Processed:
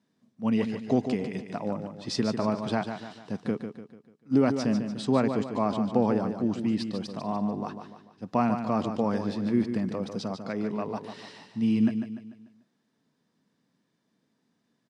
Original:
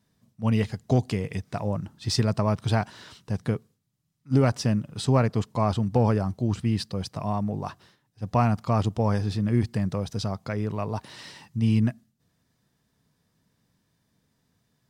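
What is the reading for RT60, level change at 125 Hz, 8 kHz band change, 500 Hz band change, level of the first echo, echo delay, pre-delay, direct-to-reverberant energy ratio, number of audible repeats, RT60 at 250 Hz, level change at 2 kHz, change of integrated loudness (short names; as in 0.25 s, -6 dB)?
none, -11.0 dB, n/a, -0.5 dB, -8.0 dB, 0.147 s, none, none, 4, none, -2.5 dB, -2.0 dB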